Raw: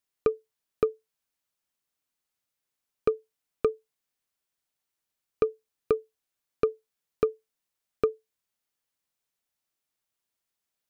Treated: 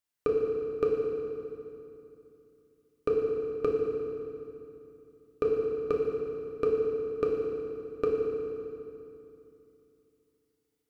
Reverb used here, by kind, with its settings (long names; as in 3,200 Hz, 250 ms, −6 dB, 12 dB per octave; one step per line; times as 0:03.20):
feedback delay network reverb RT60 2.8 s, low-frequency decay 1.3×, high-frequency decay 0.8×, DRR −3 dB
level −4.5 dB